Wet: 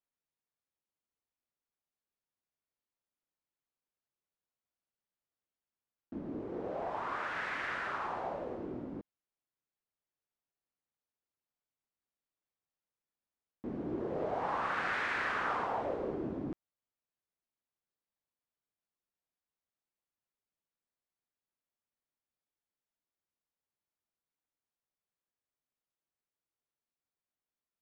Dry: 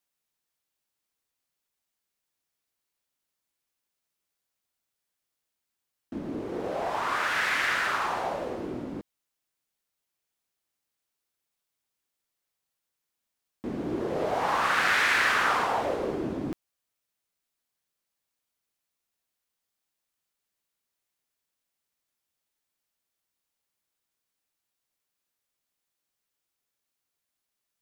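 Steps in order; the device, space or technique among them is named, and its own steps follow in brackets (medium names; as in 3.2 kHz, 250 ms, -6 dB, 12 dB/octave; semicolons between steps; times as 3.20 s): through cloth (low-pass 8.6 kHz 12 dB/octave; treble shelf 2.5 kHz -15.5 dB); trim -6 dB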